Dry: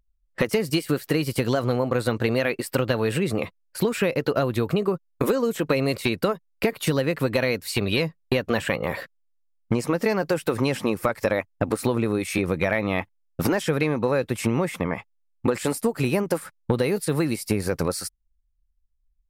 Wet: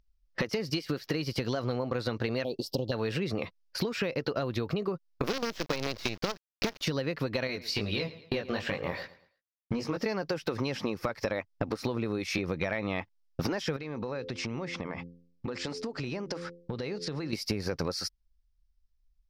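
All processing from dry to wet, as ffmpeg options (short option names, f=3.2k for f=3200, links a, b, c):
-filter_complex "[0:a]asettb=1/sr,asplit=3[a][b][c];[a]atrim=end=2.444[d];[b]atrim=start=2.44:end=2.92,asetpts=PTS-STARTPTS,afade=t=in:d=0.004:c=qsin,afade=t=out:st=0.476:d=0.004:c=qsin,asuperstop=centerf=1700:order=8:qfactor=0.72,equalizer=f=1.5k:t=o:w=0.91:g=-7.5[e];[c]atrim=start=2.916[f];[d][e]acrossfade=d=0.004:c1=hsin:c2=qsin[g];[g][f]acrossfade=d=0.004:c1=qsin:c2=hsin,asettb=1/sr,asplit=3[h][i][j];[h]atrim=end=5.244[k];[i]atrim=start=5.24:end=6.82,asetpts=PTS-STARTPTS,afade=t=in:d=0.004:c=qsin,afade=t=out:st=1.576:d=0.004:c=qsin,highpass=45,acrusher=bits=4:dc=4:mix=0:aa=0.000001[l];[j]atrim=start=6.816[m];[k][l]acrossfade=d=0.004:c1=hsin:c2=qsin[n];[n][m]acrossfade=d=0.004:c1=qsin:c2=hsin,asettb=1/sr,asplit=3[o][p][q];[o]atrim=end=7.474[r];[p]atrim=start=7.47:end=9.97,asetpts=PTS-STARTPTS,afade=t=in:d=0.004:c=qsin,afade=t=out:st=2.496:d=0.004:c=qsin,aeval=exprs='sgn(val(0))*max(abs(val(0))-0.0015,0)':c=same,flanger=delay=19:depth=3.9:speed=2.5,aecho=1:1:112|224|336:0.1|0.033|0.0109,atrim=end_sample=110250[s];[q]atrim=start=9.966[t];[r][s]acrossfade=d=0.004:c1=hsin:c2=qsin[u];[u][t]acrossfade=d=0.004:c1=qsin:c2=hsin,asettb=1/sr,asplit=3[v][w][x];[v]atrim=end=13.764[y];[w]atrim=start=13.76:end=17.33,asetpts=PTS-STARTPTS,afade=t=in:d=0.004:c=qsin,afade=t=out:st=3.566:d=0.004:c=qsin,lowpass=f=7.8k:w=0.5412,lowpass=f=7.8k:w=1.3066,bandreject=f=86.27:t=h:w=4,bandreject=f=172.54:t=h:w=4,bandreject=f=258.81:t=h:w=4,bandreject=f=345.08:t=h:w=4,bandreject=f=431.35:t=h:w=4,bandreject=f=517.62:t=h:w=4,acompressor=threshold=-33dB:ratio=4:attack=3.2:release=140:knee=1:detection=peak[z];[x]atrim=start=17.326[aa];[y][z]acrossfade=d=0.004:c1=hsin:c2=qsin[ab];[ab][aa]acrossfade=d=0.004:c1=qsin:c2=hsin,highshelf=f=6.8k:t=q:w=3:g=-9,acompressor=threshold=-29dB:ratio=4"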